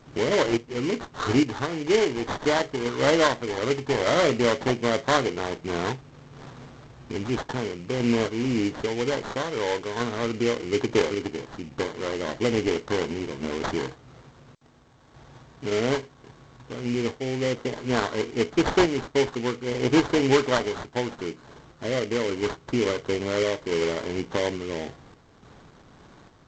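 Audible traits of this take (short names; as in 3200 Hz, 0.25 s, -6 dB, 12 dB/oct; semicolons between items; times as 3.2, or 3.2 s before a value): aliases and images of a low sample rate 2600 Hz, jitter 20%; random-step tremolo; G.722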